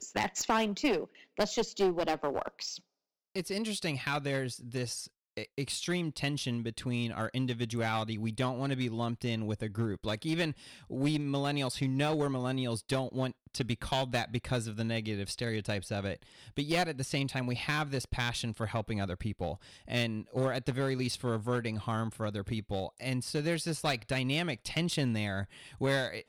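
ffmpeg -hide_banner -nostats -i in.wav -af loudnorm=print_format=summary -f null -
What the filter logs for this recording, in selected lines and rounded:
Input Integrated:    -33.5 LUFS
Input True Peak:     -15.5 dBTP
Input LRA:             2.1 LU
Input Threshold:     -43.6 LUFS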